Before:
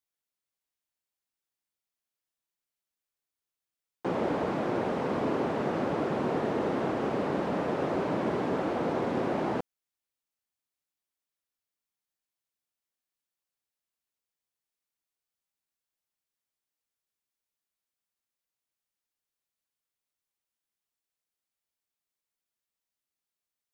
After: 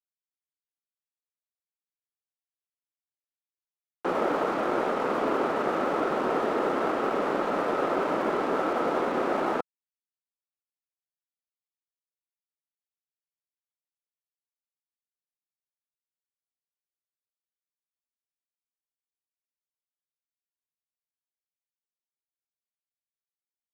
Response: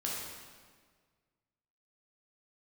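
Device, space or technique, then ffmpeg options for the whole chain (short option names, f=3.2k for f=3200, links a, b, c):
pocket radio on a weak battery: -af "highpass=310,lowpass=3.6k,aeval=exprs='sgn(val(0))*max(abs(val(0))-0.00473,0)':c=same,equalizer=f=1.3k:t=o:w=0.23:g=9.5,volume=5dB"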